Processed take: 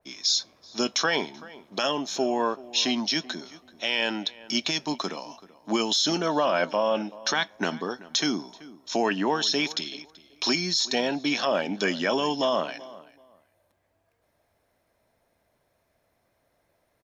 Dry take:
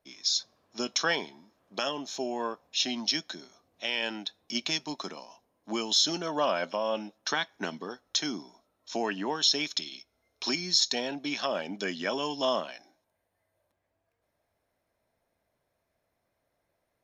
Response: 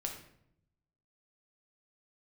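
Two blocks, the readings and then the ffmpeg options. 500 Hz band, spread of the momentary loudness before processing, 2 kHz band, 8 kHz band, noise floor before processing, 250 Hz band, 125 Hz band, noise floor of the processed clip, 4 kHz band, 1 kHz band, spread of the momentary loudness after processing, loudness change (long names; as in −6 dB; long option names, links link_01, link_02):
+6.0 dB, 16 LU, +5.0 dB, +2.0 dB, −80 dBFS, +7.0 dB, +7.0 dB, −72 dBFS, +2.5 dB, +5.5 dB, 13 LU, +3.5 dB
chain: -filter_complex "[0:a]alimiter=limit=-21dB:level=0:latency=1:release=13,asplit=2[link_01][link_02];[link_02]adelay=382,lowpass=frequency=2000:poles=1,volume=-18.5dB,asplit=2[link_03][link_04];[link_04]adelay=382,lowpass=frequency=2000:poles=1,volume=0.22[link_05];[link_01][link_03][link_05]amix=inputs=3:normalize=0,adynamicequalizer=threshold=0.00631:dfrequency=2700:dqfactor=0.7:tfrequency=2700:tqfactor=0.7:attack=5:release=100:ratio=0.375:range=2:mode=cutabove:tftype=highshelf,volume=7.5dB"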